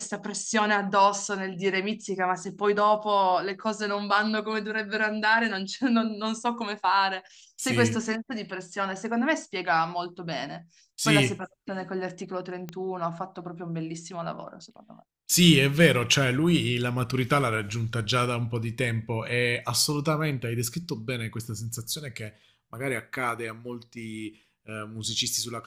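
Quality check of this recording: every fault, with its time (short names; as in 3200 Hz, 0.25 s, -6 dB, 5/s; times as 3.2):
12.69 pop -21 dBFS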